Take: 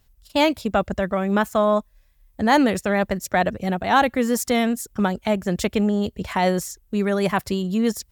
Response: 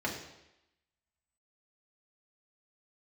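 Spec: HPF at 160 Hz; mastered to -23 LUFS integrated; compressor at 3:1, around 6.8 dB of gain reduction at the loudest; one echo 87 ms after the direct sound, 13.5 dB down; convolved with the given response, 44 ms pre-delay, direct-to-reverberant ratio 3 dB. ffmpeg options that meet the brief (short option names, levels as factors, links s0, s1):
-filter_complex "[0:a]highpass=160,acompressor=threshold=0.0891:ratio=3,aecho=1:1:87:0.211,asplit=2[s0][s1];[1:a]atrim=start_sample=2205,adelay=44[s2];[s1][s2]afir=irnorm=-1:irlink=0,volume=0.335[s3];[s0][s3]amix=inputs=2:normalize=0,volume=1.06"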